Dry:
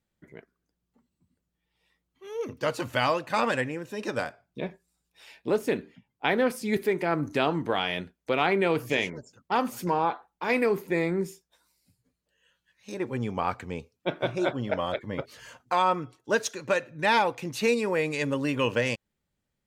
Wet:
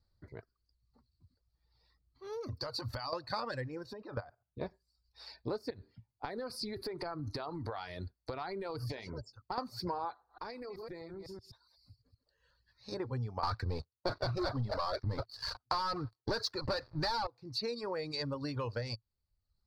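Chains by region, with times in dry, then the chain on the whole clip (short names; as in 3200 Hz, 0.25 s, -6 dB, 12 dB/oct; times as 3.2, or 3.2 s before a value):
2.33–3.13 high shelf 7400 Hz +9 dB + compressor 5:1, threshold -35 dBFS
3.93–4.61 LPF 2300 Hz + level quantiser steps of 14 dB
5.7–9.58 bell 10000 Hz +9.5 dB 0.31 oct + compressor 12:1, threshold -31 dBFS
10.13–12.92 reverse delay 0.126 s, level -8 dB + compressor 16:1, threshold -37 dBFS
13.43–17.27 dynamic EQ 1300 Hz, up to +5 dB, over -38 dBFS, Q 1.1 + sample leveller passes 5
whole clip: reverb removal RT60 0.72 s; EQ curve 110 Hz 0 dB, 170 Hz -17 dB, 1200 Hz -10 dB, 3100 Hz -27 dB, 4500 Hz +3 dB, 6600 Hz -25 dB; compressor 6:1, threshold -46 dBFS; gain +11.5 dB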